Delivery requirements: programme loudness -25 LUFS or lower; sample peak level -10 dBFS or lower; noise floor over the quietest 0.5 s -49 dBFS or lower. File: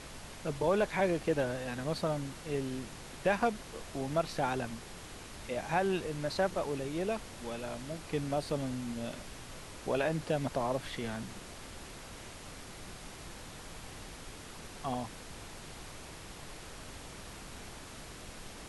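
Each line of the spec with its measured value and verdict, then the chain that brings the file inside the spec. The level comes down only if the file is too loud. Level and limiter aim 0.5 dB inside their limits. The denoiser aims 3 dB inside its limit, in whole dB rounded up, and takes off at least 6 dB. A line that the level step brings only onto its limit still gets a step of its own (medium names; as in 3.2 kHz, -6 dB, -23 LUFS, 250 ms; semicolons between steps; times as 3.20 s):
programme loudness -36.5 LUFS: pass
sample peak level -16.0 dBFS: pass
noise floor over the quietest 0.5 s -47 dBFS: fail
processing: noise reduction 6 dB, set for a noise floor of -47 dBFS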